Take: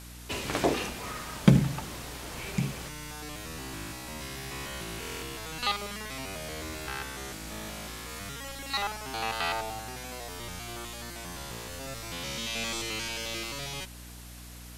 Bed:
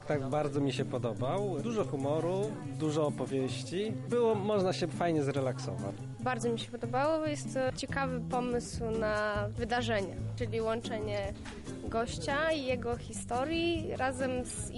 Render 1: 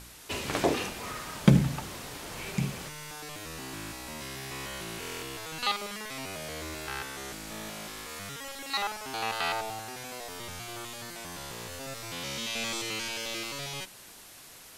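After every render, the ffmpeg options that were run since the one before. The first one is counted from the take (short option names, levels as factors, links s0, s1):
-af "bandreject=f=60:t=h:w=4,bandreject=f=120:t=h:w=4,bandreject=f=180:t=h:w=4,bandreject=f=240:t=h:w=4,bandreject=f=300:t=h:w=4"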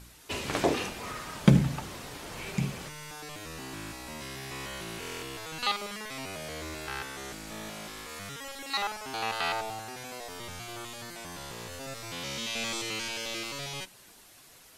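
-af "afftdn=nr=6:nf=-50"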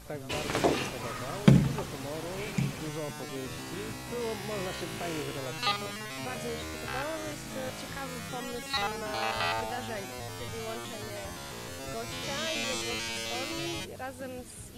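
-filter_complex "[1:a]volume=0.447[s0];[0:a][s0]amix=inputs=2:normalize=0"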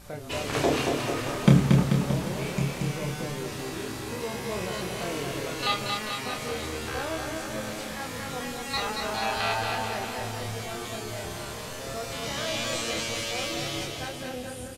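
-filter_complex "[0:a]asplit=2[s0][s1];[s1]adelay=28,volume=0.631[s2];[s0][s2]amix=inputs=2:normalize=0,aecho=1:1:230|437|623.3|791|941.9:0.631|0.398|0.251|0.158|0.1"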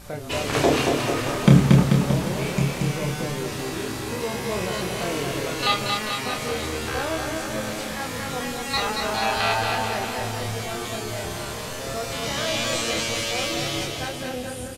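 -af "volume=1.78,alimiter=limit=0.794:level=0:latency=1"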